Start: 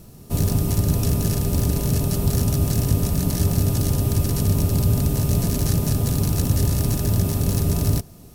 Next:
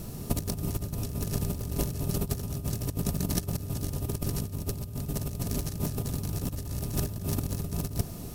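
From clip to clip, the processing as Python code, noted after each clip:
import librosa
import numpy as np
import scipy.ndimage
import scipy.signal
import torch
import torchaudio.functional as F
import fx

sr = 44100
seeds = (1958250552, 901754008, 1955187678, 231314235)

y = fx.over_compress(x, sr, threshold_db=-26.0, ratio=-0.5)
y = F.gain(torch.from_numpy(y), -3.0).numpy()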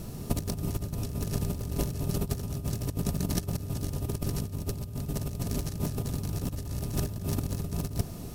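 y = fx.high_shelf(x, sr, hz=8800.0, db=-5.5)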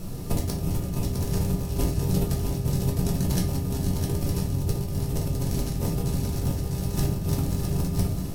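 y = x + 10.0 ** (-6.0 / 20.0) * np.pad(x, (int(658 * sr / 1000.0), 0))[:len(x)]
y = fx.room_shoebox(y, sr, seeds[0], volume_m3=65.0, walls='mixed', distance_m=0.81)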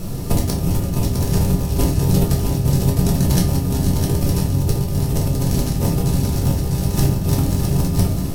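y = fx.doubler(x, sr, ms=29.0, db=-11.5)
y = F.gain(torch.from_numpy(y), 8.0).numpy()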